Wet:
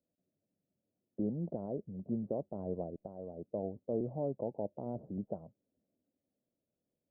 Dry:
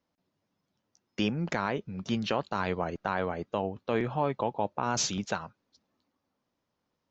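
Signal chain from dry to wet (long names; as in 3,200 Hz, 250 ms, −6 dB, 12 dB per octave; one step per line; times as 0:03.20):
0:02.85–0:03.52: downward compressor 6 to 1, threshold −32 dBFS, peak gain reduction 8 dB
elliptic low-pass filter 640 Hz, stop band 80 dB
low-shelf EQ 86 Hz −5.5 dB
level −4.5 dB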